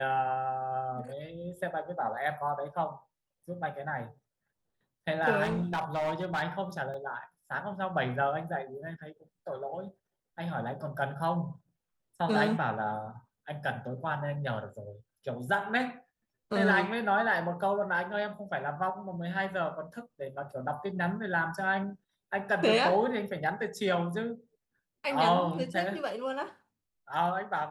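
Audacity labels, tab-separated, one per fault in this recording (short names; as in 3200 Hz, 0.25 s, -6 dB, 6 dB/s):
5.430000	6.430000	clipped -27 dBFS
6.940000	6.940000	gap 2.1 ms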